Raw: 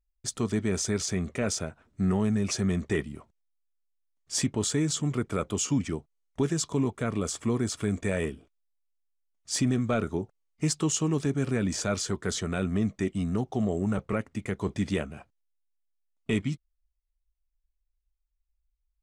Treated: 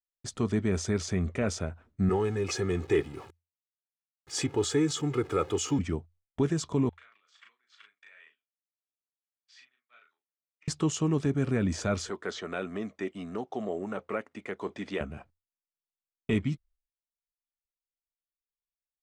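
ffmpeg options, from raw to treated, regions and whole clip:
-filter_complex "[0:a]asettb=1/sr,asplit=3[a][b][c];[a]atrim=end=2.094[d];[b]atrim=start=2.09:end=5.79,asetpts=PTS-STARTPTS,afade=t=in:d=0.004:c=qsin,afade=t=out:st=3.696:d=0.004:c=qsin,aeval=exprs='val(0)+0.5*0.00708*sgn(val(0))':c=same,highpass=140,aecho=1:1:2.4:0.75,atrim=end_sample=163170[e];[c]atrim=start=5.786[f];[d][e]acrossfade=d=0.004:c1=hsin:c2=qsin[g];[g][f]acrossfade=d=0.004:c1=qsin:c2=hsin,asettb=1/sr,asplit=3[h][i][j];[h]atrim=end=6.894[k];[i]atrim=start=6.89:end=10.68,asetpts=PTS-STARTPTS,afade=t=in:d=0.004:c=qsin,afade=t=out:st=3.786:d=0.004:c=qsin,acompressor=threshold=-41dB:ratio=8:attack=3.2:release=140:knee=1:detection=peak,asuperpass=centerf=2500:order=4:qfactor=0.95,asplit=2[l][m];[m]adelay=38,volume=-3.5dB[n];[l][n]amix=inputs=2:normalize=0,atrim=end_sample=167139[o];[j]atrim=start=10.676[p];[k][o]acrossfade=d=0.004:c1=hsin:c2=qsin[q];[q][p]acrossfade=d=0.004:c1=qsin:c2=hsin,asettb=1/sr,asplit=3[r][s][t];[r]atrim=end=12.094[u];[s]atrim=start=12.09:end=15.01,asetpts=PTS-STARTPTS,afade=t=in:d=0.004:c=qsin,afade=t=out:st=2.916:d=0.004:c=qsin,highpass=370,acrossover=split=5800[v][w];[w]acompressor=threshold=-58dB:ratio=4:attack=1:release=60[x];[v][x]amix=inputs=2:normalize=0[y];[t]atrim=start=15.006[z];[u][y]acrossfade=d=0.004:c1=hsin:c2=qsin[aa];[aa][z]acrossfade=d=0.004:c1=qsin:c2=hsin,aemphasis=mode=reproduction:type=50kf,agate=range=-33dB:threshold=-55dB:ratio=3:detection=peak,equalizer=f=84:t=o:w=0.22:g=7.5"

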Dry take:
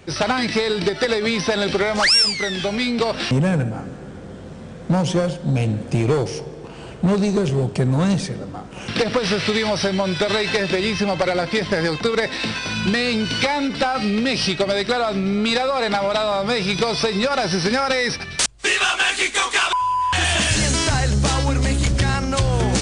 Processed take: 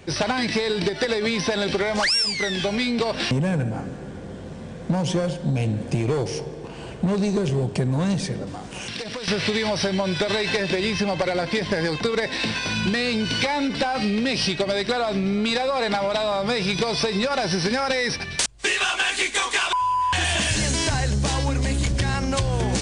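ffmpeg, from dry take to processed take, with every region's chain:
-filter_complex "[0:a]asettb=1/sr,asplit=3[a][b][c];[a]atrim=end=8.474[d];[b]atrim=start=8.47:end=9.28,asetpts=PTS-STARTPTS,afade=t=in:d=0.004:c=qsin,afade=t=out:st=0.806:d=0.004:c=qsin,highshelf=f=2.5k:g=10,acompressor=threshold=-29dB:ratio=6:attack=3.2:release=140:knee=1:detection=peak[e];[c]atrim=start=9.276[f];[d][e]acrossfade=d=0.004:c1=hsin:c2=qsin[g];[g][f]acrossfade=d=0.004:c1=qsin:c2=hsin,bandreject=f=1.3k:w=11,acompressor=threshold=-19dB:ratio=6"

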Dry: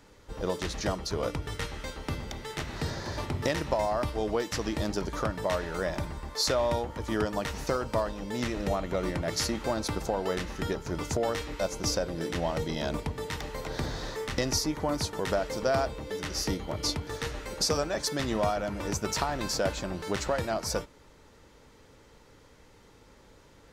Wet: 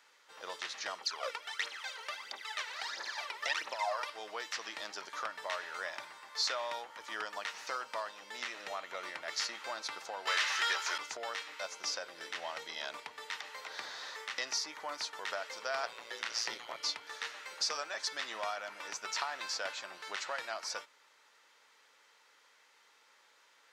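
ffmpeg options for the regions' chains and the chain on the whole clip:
-filter_complex "[0:a]asettb=1/sr,asplit=3[a][b][c];[a]atrim=end=1.014[d];[b]atrim=start=1.01:end=4.1,asetpts=PTS-STARTPTS,afade=t=in:d=0.004:c=qsin,afade=t=out:st=3.086:d=0.004:c=qsin,highpass=310,aphaser=in_gain=1:out_gain=1:delay=2.3:decay=0.74:speed=1.5:type=triangular[e];[c]atrim=start=4.096[f];[d][e]acrossfade=d=0.004:c1=hsin:c2=qsin[g];[g][f]acrossfade=d=0.004:c1=qsin:c2=hsin,asettb=1/sr,asplit=3[h][i][j];[h]atrim=end=10.274[k];[i]atrim=start=10.27:end=10.98,asetpts=PTS-STARTPTS,afade=t=in:d=0.004:c=qsin,afade=t=out:st=0.706:d=0.004:c=qsin,highpass=f=720:p=1,aemphasis=mode=production:type=50fm,asplit=2[l][m];[m]highpass=f=720:p=1,volume=24dB,asoftclip=type=tanh:threshold=-16.5dB[n];[l][n]amix=inputs=2:normalize=0,lowpass=f=3.9k:p=1,volume=-6dB[o];[j]atrim=start=10.976[p];[k][o]acrossfade=d=0.004:c1=hsin:c2=qsin[q];[q][p]acrossfade=d=0.004:c1=qsin:c2=hsin,asettb=1/sr,asplit=3[r][s][t];[r]atrim=end=15.834[u];[s]atrim=start=15.83:end=16.77,asetpts=PTS-STARTPTS,afade=t=in:d=0.004:c=qsin,afade=t=out:st=0.936:d=0.004:c=qsin,acontrast=39,aeval=exprs='val(0)*sin(2*PI*57*n/s)':c=same[v];[t]atrim=start=16.766[w];[u][v]acrossfade=d=0.004:c1=hsin:c2=qsin[x];[x][w]acrossfade=d=0.004:c1=qsin:c2=hsin,highpass=1.3k,acrossover=split=7300[y][z];[z]acompressor=threshold=-57dB:ratio=4:attack=1:release=60[aa];[y][aa]amix=inputs=2:normalize=0,highshelf=f=5.7k:g=-7.5"

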